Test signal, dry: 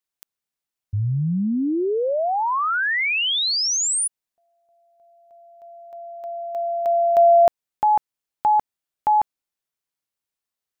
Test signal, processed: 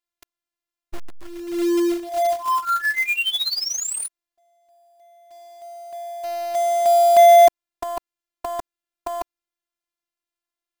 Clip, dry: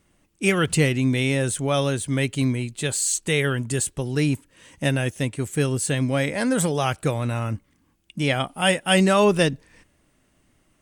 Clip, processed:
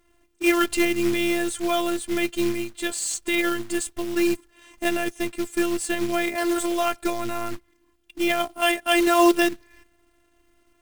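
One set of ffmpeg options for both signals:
-af "afftfilt=real='hypot(re,im)*cos(PI*b)':imag='0':win_size=512:overlap=0.75,highshelf=f=5.1k:g=-8.5,acrusher=bits=3:mode=log:mix=0:aa=0.000001,volume=4.5dB"

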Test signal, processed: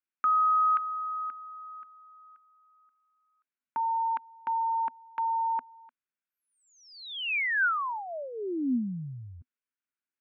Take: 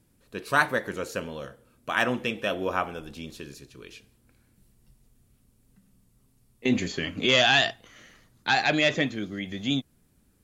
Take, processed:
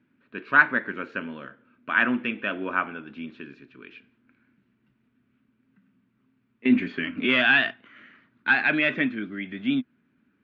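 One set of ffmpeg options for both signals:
-af "highpass=200,equalizer=f=250:t=q:w=4:g=8,equalizer=f=500:t=q:w=4:g=-9,equalizer=f=760:t=q:w=4:g=-8,equalizer=f=1.5k:t=q:w=4:g=8,equalizer=f=2.4k:t=q:w=4:g=4,lowpass=f=2.8k:w=0.5412,lowpass=f=2.8k:w=1.3066"

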